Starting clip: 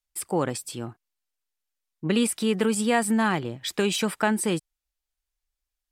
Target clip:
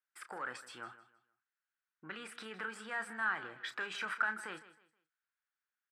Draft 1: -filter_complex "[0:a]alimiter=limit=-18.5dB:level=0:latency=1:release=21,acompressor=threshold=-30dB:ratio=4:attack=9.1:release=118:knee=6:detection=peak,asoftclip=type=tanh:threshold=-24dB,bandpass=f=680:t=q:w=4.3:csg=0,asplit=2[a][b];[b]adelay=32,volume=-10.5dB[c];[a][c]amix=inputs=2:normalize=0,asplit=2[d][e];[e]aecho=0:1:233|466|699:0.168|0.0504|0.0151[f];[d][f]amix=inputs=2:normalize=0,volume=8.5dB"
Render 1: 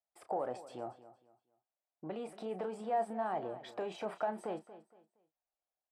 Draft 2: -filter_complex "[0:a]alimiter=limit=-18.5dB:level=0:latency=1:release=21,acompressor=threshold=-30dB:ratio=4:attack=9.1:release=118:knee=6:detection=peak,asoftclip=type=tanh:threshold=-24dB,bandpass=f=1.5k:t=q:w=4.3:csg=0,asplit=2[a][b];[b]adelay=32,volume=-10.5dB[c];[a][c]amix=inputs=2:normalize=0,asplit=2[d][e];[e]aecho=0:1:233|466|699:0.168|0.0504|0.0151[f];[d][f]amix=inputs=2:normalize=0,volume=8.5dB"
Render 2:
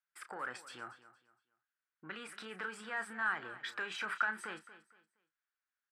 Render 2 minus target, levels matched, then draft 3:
echo 75 ms late
-filter_complex "[0:a]alimiter=limit=-18.5dB:level=0:latency=1:release=21,acompressor=threshold=-30dB:ratio=4:attack=9.1:release=118:knee=6:detection=peak,asoftclip=type=tanh:threshold=-24dB,bandpass=f=1.5k:t=q:w=4.3:csg=0,asplit=2[a][b];[b]adelay=32,volume=-10.5dB[c];[a][c]amix=inputs=2:normalize=0,asplit=2[d][e];[e]aecho=0:1:158|316|474:0.168|0.0504|0.0151[f];[d][f]amix=inputs=2:normalize=0,volume=8.5dB"

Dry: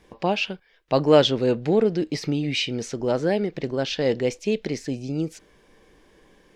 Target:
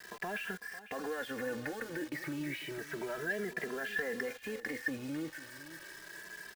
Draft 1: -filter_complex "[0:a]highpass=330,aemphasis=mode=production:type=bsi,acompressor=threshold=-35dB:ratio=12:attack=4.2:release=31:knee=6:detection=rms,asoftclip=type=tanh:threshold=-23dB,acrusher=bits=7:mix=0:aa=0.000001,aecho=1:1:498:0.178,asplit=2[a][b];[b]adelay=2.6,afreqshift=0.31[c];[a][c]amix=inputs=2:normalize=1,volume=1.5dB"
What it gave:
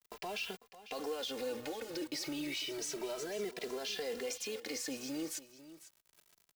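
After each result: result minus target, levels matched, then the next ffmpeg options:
2000 Hz band -8.5 dB; 125 Hz band -8.5 dB
-filter_complex "[0:a]highpass=330,aemphasis=mode=production:type=bsi,acompressor=threshold=-35dB:ratio=12:attack=4.2:release=31:knee=6:detection=rms,lowpass=f=1.7k:t=q:w=9.4,asoftclip=type=tanh:threshold=-23dB,acrusher=bits=7:mix=0:aa=0.000001,aecho=1:1:498:0.178,asplit=2[a][b];[b]adelay=2.6,afreqshift=0.31[c];[a][c]amix=inputs=2:normalize=1,volume=1.5dB"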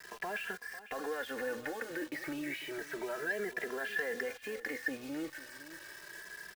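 125 Hz band -9.0 dB
-filter_complex "[0:a]highpass=130,aemphasis=mode=production:type=bsi,acompressor=threshold=-35dB:ratio=12:attack=4.2:release=31:knee=6:detection=rms,lowpass=f=1.7k:t=q:w=9.4,asoftclip=type=tanh:threshold=-23dB,acrusher=bits=7:mix=0:aa=0.000001,aecho=1:1:498:0.178,asplit=2[a][b];[b]adelay=2.6,afreqshift=0.31[c];[a][c]amix=inputs=2:normalize=1,volume=1.5dB"

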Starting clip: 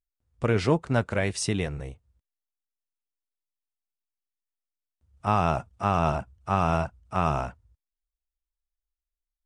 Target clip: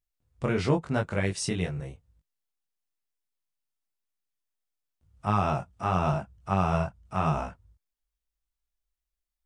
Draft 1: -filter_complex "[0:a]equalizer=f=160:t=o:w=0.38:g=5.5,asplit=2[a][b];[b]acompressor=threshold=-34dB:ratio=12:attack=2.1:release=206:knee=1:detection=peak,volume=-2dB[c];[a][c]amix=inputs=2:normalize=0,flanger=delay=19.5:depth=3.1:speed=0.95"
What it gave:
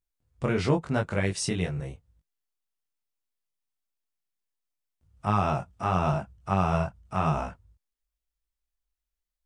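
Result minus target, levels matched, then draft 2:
compressor: peak gain reduction -11 dB
-filter_complex "[0:a]equalizer=f=160:t=o:w=0.38:g=5.5,asplit=2[a][b];[b]acompressor=threshold=-46dB:ratio=12:attack=2.1:release=206:knee=1:detection=peak,volume=-2dB[c];[a][c]amix=inputs=2:normalize=0,flanger=delay=19.5:depth=3.1:speed=0.95"

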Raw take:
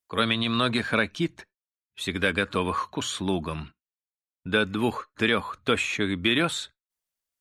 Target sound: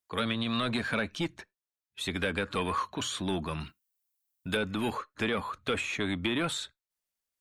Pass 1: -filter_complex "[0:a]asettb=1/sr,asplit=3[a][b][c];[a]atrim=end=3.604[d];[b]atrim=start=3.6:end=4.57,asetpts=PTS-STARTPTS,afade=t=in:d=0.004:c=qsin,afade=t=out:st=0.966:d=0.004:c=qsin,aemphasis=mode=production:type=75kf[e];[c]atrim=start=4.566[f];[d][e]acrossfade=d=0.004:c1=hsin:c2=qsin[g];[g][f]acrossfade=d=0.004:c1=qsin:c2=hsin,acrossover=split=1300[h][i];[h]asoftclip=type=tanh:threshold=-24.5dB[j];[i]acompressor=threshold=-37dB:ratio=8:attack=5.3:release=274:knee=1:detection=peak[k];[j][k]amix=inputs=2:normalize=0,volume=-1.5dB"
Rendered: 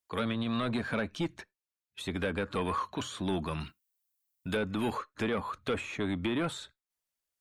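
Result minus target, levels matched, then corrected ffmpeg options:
compressor: peak gain reduction +7.5 dB
-filter_complex "[0:a]asettb=1/sr,asplit=3[a][b][c];[a]atrim=end=3.604[d];[b]atrim=start=3.6:end=4.57,asetpts=PTS-STARTPTS,afade=t=in:d=0.004:c=qsin,afade=t=out:st=0.966:d=0.004:c=qsin,aemphasis=mode=production:type=75kf[e];[c]atrim=start=4.566[f];[d][e]acrossfade=d=0.004:c1=hsin:c2=qsin[g];[g][f]acrossfade=d=0.004:c1=qsin:c2=hsin,acrossover=split=1300[h][i];[h]asoftclip=type=tanh:threshold=-24.5dB[j];[i]acompressor=threshold=-28.5dB:ratio=8:attack=5.3:release=274:knee=1:detection=peak[k];[j][k]amix=inputs=2:normalize=0,volume=-1.5dB"

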